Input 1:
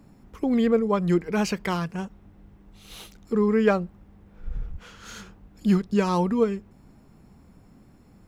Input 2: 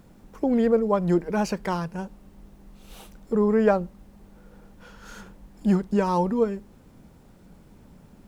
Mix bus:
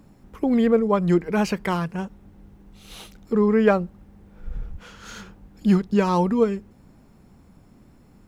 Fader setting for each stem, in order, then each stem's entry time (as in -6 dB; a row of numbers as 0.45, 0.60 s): 0.0, -8.0 dB; 0.00, 0.00 s